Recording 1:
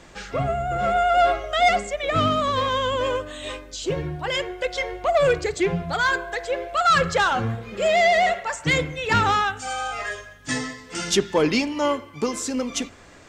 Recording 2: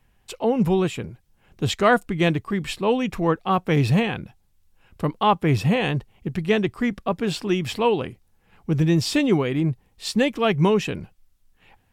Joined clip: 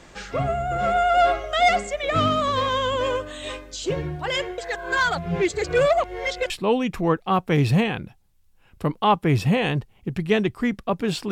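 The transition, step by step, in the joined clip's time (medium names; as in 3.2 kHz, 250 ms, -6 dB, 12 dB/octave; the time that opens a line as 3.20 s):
recording 1
4.58–6.50 s: reverse
6.50 s: go over to recording 2 from 2.69 s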